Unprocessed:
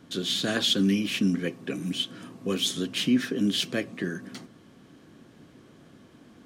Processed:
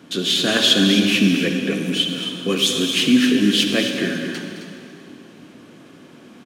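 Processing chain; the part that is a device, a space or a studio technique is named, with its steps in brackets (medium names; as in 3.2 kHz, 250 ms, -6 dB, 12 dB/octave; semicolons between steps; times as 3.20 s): stadium PA (high-pass 160 Hz 12 dB/octave; peaking EQ 2.6 kHz +5 dB 0.36 oct; loudspeakers at several distances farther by 74 m -12 dB, 91 m -10 dB; reverberation RT60 2.6 s, pre-delay 45 ms, DRR 4.5 dB); trim +7.5 dB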